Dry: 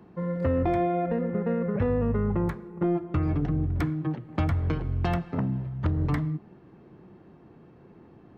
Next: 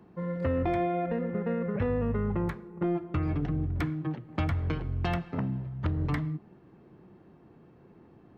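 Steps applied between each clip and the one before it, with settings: dynamic EQ 2800 Hz, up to +5 dB, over -47 dBFS, Q 0.74; gain -3.5 dB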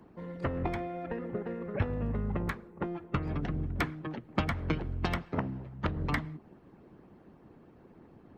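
harmonic-percussive split harmonic -15 dB; gain +5.5 dB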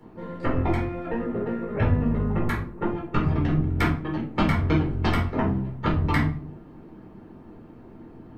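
shoebox room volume 280 m³, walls furnished, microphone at 4.3 m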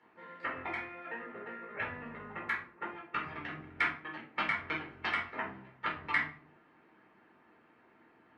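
band-pass 2000 Hz, Q 1.7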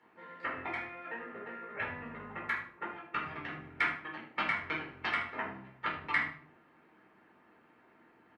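feedback echo 76 ms, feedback 24%, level -12 dB

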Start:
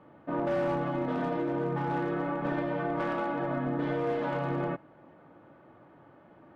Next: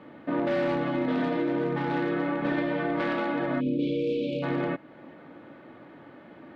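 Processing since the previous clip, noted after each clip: graphic EQ 250/500/2000/4000 Hz +9/+4/+9/+12 dB; in parallel at +1 dB: compressor, threshold -34 dBFS, peak gain reduction 13.5 dB; on the sum: spectral delete 3.61–4.43, 590–2200 Hz; gain -5.5 dB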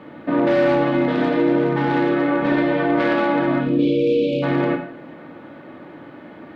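reverb RT60 0.60 s, pre-delay 46 ms, DRR 7 dB; gain +7.5 dB

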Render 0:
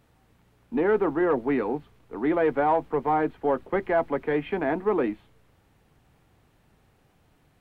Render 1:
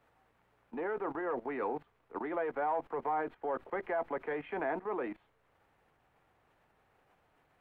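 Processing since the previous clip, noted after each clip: level quantiser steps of 17 dB; three-band isolator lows -13 dB, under 450 Hz, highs -12 dB, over 2500 Hz; gain +4 dB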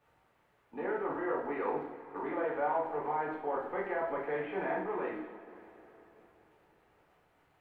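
two-slope reverb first 0.59 s, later 3.8 s, from -18 dB, DRR -5 dB; gain -4.5 dB

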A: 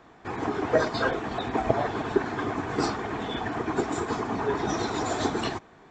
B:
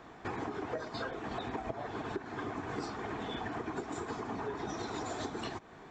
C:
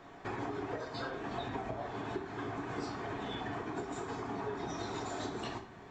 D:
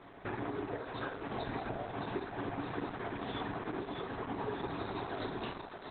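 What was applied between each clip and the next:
compressor 12:1, threshold -36 dBFS, peak gain reduction 20 dB; gain +1 dB
reverb RT60 0.55 s, pre-delay 5 ms, DRR 2.5 dB; gain -2.5 dB
on a send: thinning echo 0.622 s, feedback 55%, high-pass 520 Hz, level -5.5 dB; on the sum: gain +1.5 dB; Opus 8 kbps 48000 Hz

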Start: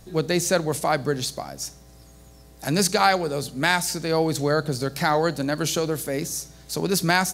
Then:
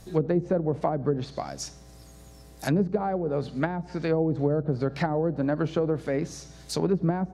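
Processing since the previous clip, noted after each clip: treble ducked by the level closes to 450 Hz, closed at -18 dBFS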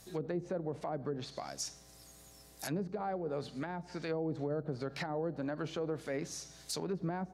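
tilt +2 dB/oct; limiter -21 dBFS, peak gain reduction 10.5 dB; gain -6.5 dB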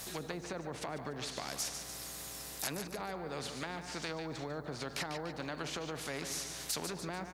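feedback echo 0.146 s, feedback 36%, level -14.5 dB; spectral compressor 2:1; gain +7 dB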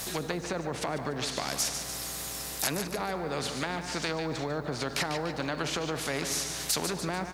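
reverb RT60 3.0 s, pre-delay 5 ms, DRR 17 dB; gain +8 dB

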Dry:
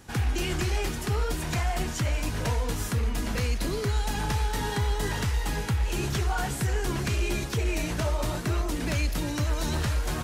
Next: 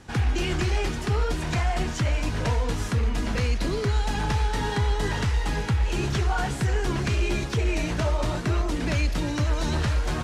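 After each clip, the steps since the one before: air absorption 60 m; gain +3 dB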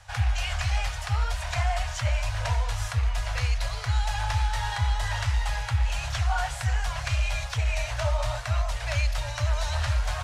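elliptic band-stop 110–610 Hz, stop band 40 dB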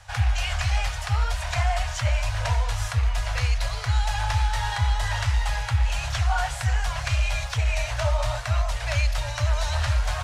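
crackle 18/s -49 dBFS; gain +2.5 dB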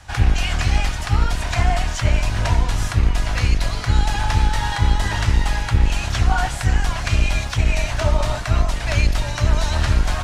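octaver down 1 oct, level -1 dB; gain +4 dB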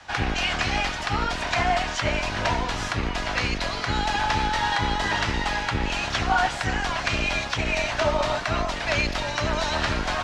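three-band isolator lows -16 dB, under 190 Hz, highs -18 dB, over 6200 Hz; gain +1.5 dB

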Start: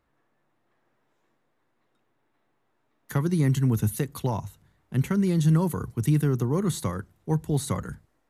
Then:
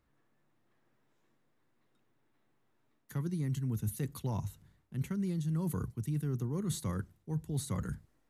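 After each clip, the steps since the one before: EQ curve 190 Hz 0 dB, 710 Hz -7 dB, 5000 Hz -2 dB; reverse; compressor 6:1, threshold -32 dBFS, peak gain reduction 14.5 dB; reverse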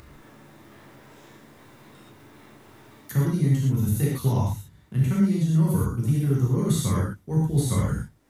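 transient shaper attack +4 dB, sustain -2 dB; non-linear reverb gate 0.15 s flat, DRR -6 dB; upward compressor, threshold -38 dBFS; gain +4 dB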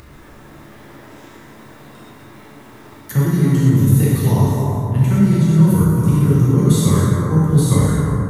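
plate-style reverb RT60 3.1 s, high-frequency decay 0.3×, pre-delay 0.11 s, DRR 0.5 dB; gain +6.5 dB

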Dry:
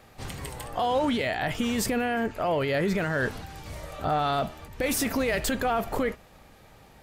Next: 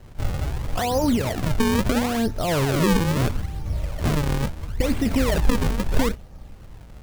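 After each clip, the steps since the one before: RIAA curve playback; decimation with a swept rate 37×, swing 160% 0.75 Hz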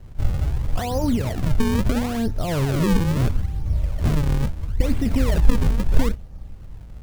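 low shelf 190 Hz +10 dB; gain -4.5 dB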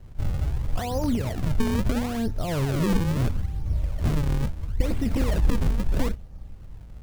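one-sided fold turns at -13.5 dBFS; gain -3.5 dB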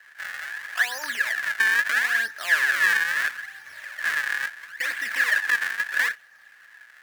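resonant high-pass 1700 Hz, resonance Q 15; gain +5.5 dB

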